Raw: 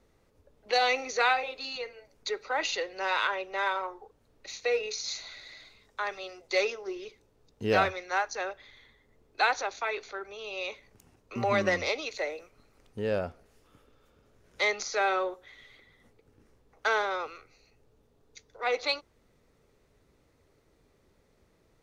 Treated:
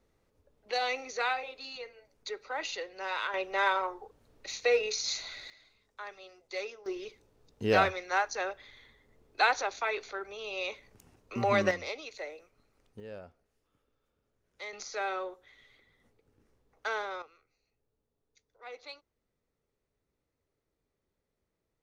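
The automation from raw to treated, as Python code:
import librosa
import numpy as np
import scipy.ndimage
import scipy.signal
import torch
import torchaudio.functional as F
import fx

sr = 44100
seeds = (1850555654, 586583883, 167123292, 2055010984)

y = fx.gain(x, sr, db=fx.steps((0.0, -6.0), (3.34, 2.0), (5.5, -10.5), (6.86, 0.0), (11.71, -8.0), (13.0, -15.5), (14.73, -7.0), (17.22, -17.0)))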